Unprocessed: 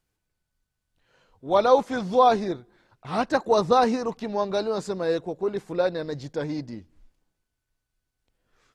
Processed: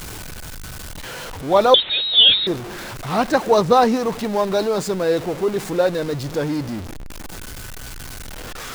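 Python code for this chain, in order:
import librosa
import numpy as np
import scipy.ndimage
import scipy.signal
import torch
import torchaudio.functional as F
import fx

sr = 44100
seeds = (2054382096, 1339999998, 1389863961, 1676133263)

y = x + 0.5 * 10.0 ** (-31.0 / 20.0) * np.sign(x)
y = fx.freq_invert(y, sr, carrier_hz=4000, at=(1.74, 2.47))
y = y * 10.0 ** (4.5 / 20.0)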